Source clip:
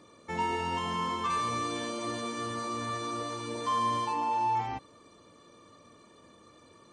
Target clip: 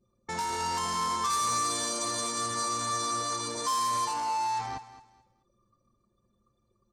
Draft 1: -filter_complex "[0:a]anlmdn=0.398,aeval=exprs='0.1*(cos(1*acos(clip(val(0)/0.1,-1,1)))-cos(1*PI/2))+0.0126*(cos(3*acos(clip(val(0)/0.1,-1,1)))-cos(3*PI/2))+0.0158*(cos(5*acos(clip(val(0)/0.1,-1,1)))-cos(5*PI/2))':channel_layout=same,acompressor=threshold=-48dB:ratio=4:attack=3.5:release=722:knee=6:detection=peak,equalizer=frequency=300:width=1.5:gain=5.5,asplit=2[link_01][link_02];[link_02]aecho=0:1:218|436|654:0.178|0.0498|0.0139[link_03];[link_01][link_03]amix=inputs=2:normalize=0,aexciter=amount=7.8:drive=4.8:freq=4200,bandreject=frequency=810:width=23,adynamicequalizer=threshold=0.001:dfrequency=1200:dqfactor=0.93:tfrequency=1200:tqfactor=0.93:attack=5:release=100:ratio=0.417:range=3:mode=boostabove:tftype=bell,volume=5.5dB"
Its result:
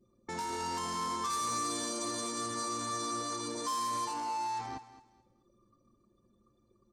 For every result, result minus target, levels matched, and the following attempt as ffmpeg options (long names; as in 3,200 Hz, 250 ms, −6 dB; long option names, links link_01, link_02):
250 Hz band +6.5 dB; downward compressor: peak gain reduction +6 dB
-filter_complex "[0:a]anlmdn=0.398,aeval=exprs='0.1*(cos(1*acos(clip(val(0)/0.1,-1,1)))-cos(1*PI/2))+0.0126*(cos(3*acos(clip(val(0)/0.1,-1,1)))-cos(3*PI/2))+0.0158*(cos(5*acos(clip(val(0)/0.1,-1,1)))-cos(5*PI/2))':channel_layout=same,acompressor=threshold=-48dB:ratio=4:attack=3.5:release=722:knee=6:detection=peak,equalizer=frequency=300:width=1.5:gain=-3.5,asplit=2[link_01][link_02];[link_02]aecho=0:1:218|436|654:0.178|0.0498|0.0139[link_03];[link_01][link_03]amix=inputs=2:normalize=0,aexciter=amount=7.8:drive=4.8:freq=4200,bandreject=frequency=810:width=23,adynamicequalizer=threshold=0.001:dfrequency=1200:dqfactor=0.93:tfrequency=1200:tqfactor=0.93:attack=5:release=100:ratio=0.417:range=3:mode=boostabove:tftype=bell,volume=5.5dB"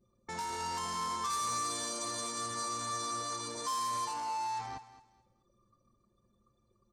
downward compressor: peak gain reduction +6 dB
-filter_complex "[0:a]anlmdn=0.398,aeval=exprs='0.1*(cos(1*acos(clip(val(0)/0.1,-1,1)))-cos(1*PI/2))+0.0126*(cos(3*acos(clip(val(0)/0.1,-1,1)))-cos(3*PI/2))+0.0158*(cos(5*acos(clip(val(0)/0.1,-1,1)))-cos(5*PI/2))':channel_layout=same,acompressor=threshold=-40dB:ratio=4:attack=3.5:release=722:knee=6:detection=peak,equalizer=frequency=300:width=1.5:gain=-3.5,asplit=2[link_01][link_02];[link_02]aecho=0:1:218|436|654:0.178|0.0498|0.0139[link_03];[link_01][link_03]amix=inputs=2:normalize=0,aexciter=amount=7.8:drive=4.8:freq=4200,bandreject=frequency=810:width=23,adynamicequalizer=threshold=0.001:dfrequency=1200:dqfactor=0.93:tfrequency=1200:tqfactor=0.93:attack=5:release=100:ratio=0.417:range=3:mode=boostabove:tftype=bell,volume=5.5dB"